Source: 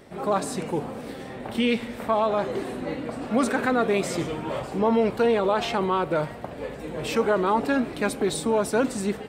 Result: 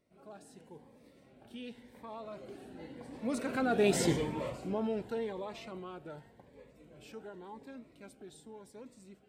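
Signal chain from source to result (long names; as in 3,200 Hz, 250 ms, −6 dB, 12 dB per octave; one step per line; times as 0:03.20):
source passing by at 0:04.04, 9 m/s, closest 1.9 metres
notch filter 1,200 Hz, Q 10
phaser whose notches keep moving one way rising 0.89 Hz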